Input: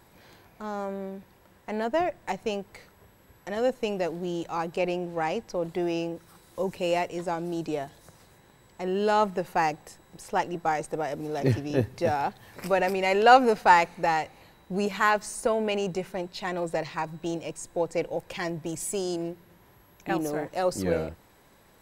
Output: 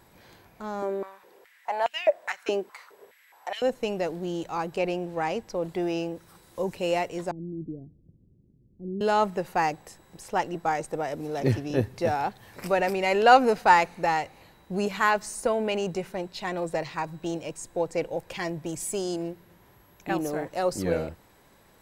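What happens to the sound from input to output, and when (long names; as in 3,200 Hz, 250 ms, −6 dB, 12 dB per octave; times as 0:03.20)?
0:00.82–0:03.62: high-pass on a step sequencer 4.8 Hz 320–2,700 Hz
0:07.31–0:09.01: inverse Chebyshev low-pass filter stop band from 1,800 Hz, stop band 80 dB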